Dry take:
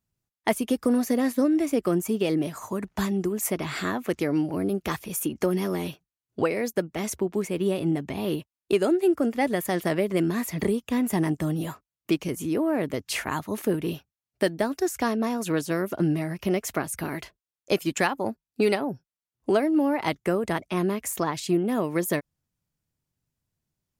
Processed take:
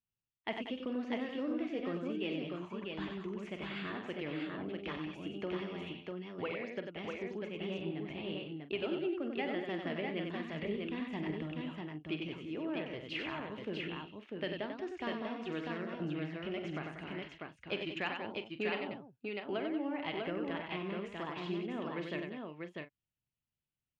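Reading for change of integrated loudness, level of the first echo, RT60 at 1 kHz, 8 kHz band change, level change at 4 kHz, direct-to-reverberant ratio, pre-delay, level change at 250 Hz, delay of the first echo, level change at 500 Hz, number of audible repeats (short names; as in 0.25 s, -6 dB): -13.0 dB, -11.0 dB, none, under -35 dB, -7.0 dB, none, none, -13.5 dB, 47 ms, -13.0 dB, 5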